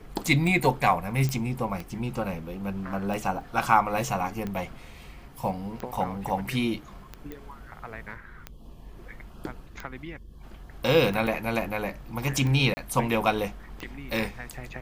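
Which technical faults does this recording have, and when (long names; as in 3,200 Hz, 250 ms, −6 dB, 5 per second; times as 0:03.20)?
scratch tick 45 rpm
0:01.29: click −16 dBFS
0:03.41: drop-out 3 ms
0:07.32: click −24 dBFS
0:11.27: drop-out 2.9 ms
0:12.74–0:12.77: drop-out 30 ms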